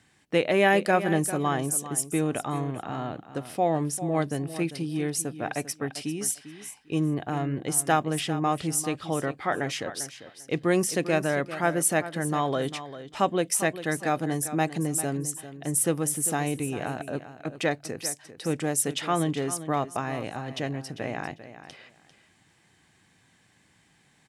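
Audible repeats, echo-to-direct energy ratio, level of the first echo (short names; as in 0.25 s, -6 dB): 2, -13.0 dB, -13.0 dB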